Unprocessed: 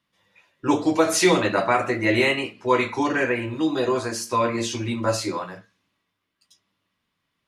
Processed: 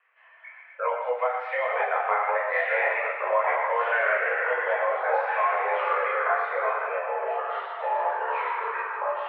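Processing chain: tilt EQ +2 dB/octave; compression, threshold -27 dBFS, peak gain reduction 13 dB; chorus 1.3 Hz, delay 17.5 ms, depth 6.3 ms; wide varispeed 0.805×; thinning echo 115 ms, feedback 62%, high-pass 780 Hz, level -7 dB; ever faster or slower copies 654 ms, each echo -5 st, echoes 3; reverberation RT60 0.55 s, pre-delay 100 ms, DRR 10.5 dB; mistuned SSB +240 Hz 260–2000 Hz; tape noise reduction on one side only encoder only; trim +7.5 dB

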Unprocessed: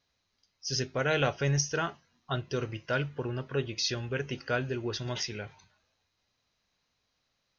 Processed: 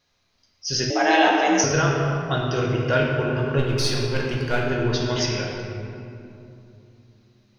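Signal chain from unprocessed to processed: 3.58–4.72 s: partial rectifier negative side -7 dB; reverberation RT60 2.8 s, pre-delay 6 ms, DRR -2.5 dB; 0.90–1.64 s: frequency shift +180 Hz; trim +6 dB

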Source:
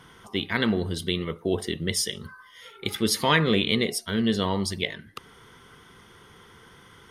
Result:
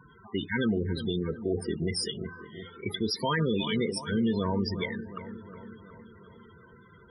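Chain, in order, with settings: loudest bins only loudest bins 16; bucket-brigade echo 363 ms, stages 4096, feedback 61%, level -14 dB; peak limiter -19 dBFS, peak gain reduction 8 dB

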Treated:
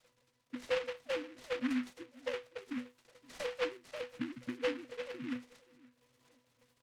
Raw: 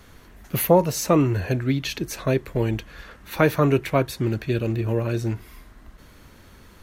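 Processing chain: formants replaced by sine waves; FFT band-reject 840–1800 Hz; dynamic bell 1.7 kHz, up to +6 dB, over -38 dBFS, Q 0.73; compression 3:1, threshold -32 dBFS, peak gain reduction 16 dB; crackle 180 per s -42 dBFS; random-step tremolo 3.5 Hz; pitch-class resonator B, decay 0.23 s; on a send: feedback delay 522 ms, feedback 25%, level -23 dB; on the sum: delay time shaken by noise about 1.8 kHz, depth 0.14 ms; trim +10 dB

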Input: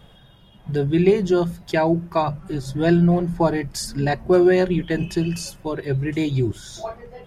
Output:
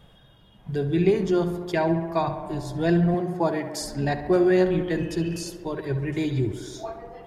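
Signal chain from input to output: 3.14–3.81 s: high-pass 160 Hz 12 dB/octave; on a send: tape echo 68 ms, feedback 88%, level -10 dB, low-pass 2.8 kHz; on the sum: trim -4.5 dB

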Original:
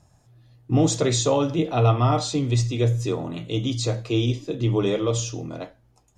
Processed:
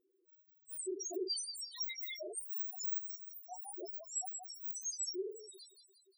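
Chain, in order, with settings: spectrum inverted on a logarithmic axis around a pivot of 1.6 kHz; bass shelf 380 Hz -10 dB; compression 1.5:1, threshold -36 dBFS, peak gain reduction 6 dB; two-band feedback delay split 460 Hz, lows 94 ms, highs 176 ms, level -7.5 dB; loudest bins only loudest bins 2; trim -2 dB

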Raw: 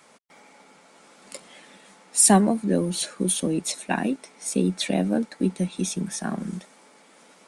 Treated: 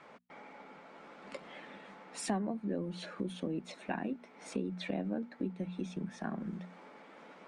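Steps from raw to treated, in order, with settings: low-pass 2.3 kHz 12 dB/octave; hum notches 60/120/180/240 Hz; compression 2.5:1, threshold -41 dBFS, peak gain reduction 19 dB; trim +1 dB

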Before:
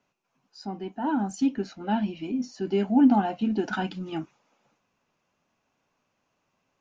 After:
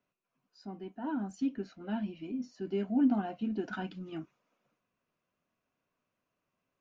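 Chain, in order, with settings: treble shelf 4.7 kHz -9.5 dB; band-stop 840 Hz, Q 5.1; trim -8 dB

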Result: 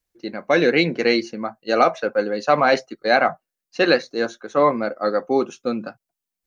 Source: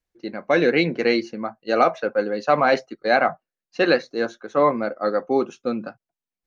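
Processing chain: treble shelf 5.3 kHz +9 dB; trim +1 dB

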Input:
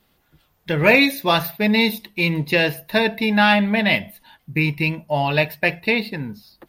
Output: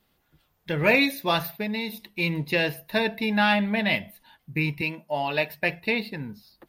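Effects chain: 1.49–2.10 s: compression 10:1, threshold -20 dBFS, peak gain reduction 8 dB; 4.81–5.50 s: high-pass 230 Hz 12 dB/octave; trim -6 dB

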